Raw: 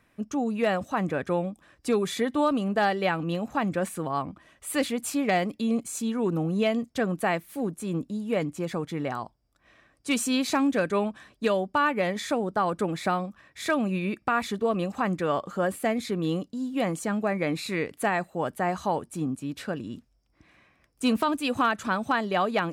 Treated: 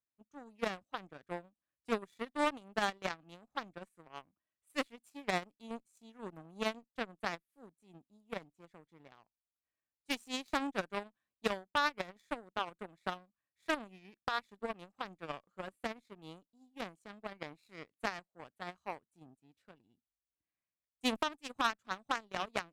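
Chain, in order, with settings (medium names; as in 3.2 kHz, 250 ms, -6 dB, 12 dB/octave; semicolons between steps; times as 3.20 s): Chebyshev shaper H 3 -10 dB, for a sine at -14 dBFS; upward expansion 1.5:1, over -40 dBFS; trim -5 dB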